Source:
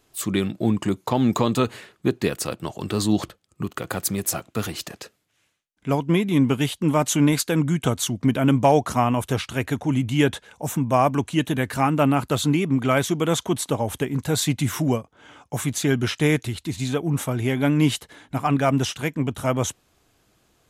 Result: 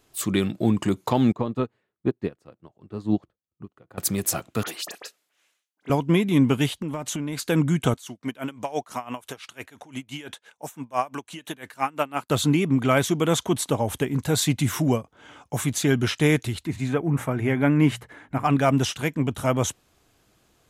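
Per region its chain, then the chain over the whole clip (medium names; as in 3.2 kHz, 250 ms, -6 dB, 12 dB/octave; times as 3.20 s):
1.32–3.98 s: low-pass 1 kHz 6 dB/octave + upward expansion 2.5:1, over -34 dBFS
4.63–5.90 s: high-pass 440 Hz + phase dispersion highs, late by 43 ms, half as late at 2.8 kHz
6.67–7.43 s: treble shelf 5.7 kHz -4.5 dB + compression 16:1, threshold -25 dBFS
7.94–12.30 s: high-pass 690 Hz 6 dB/octave + logarithmic tremolo 5.9 Hz, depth 21 dB
16.65–18.44 s: resonant high shelf 2.7 kHz -8.5 dB, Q 1.5 + hum notches 60/120/180 Hz
whole clip: none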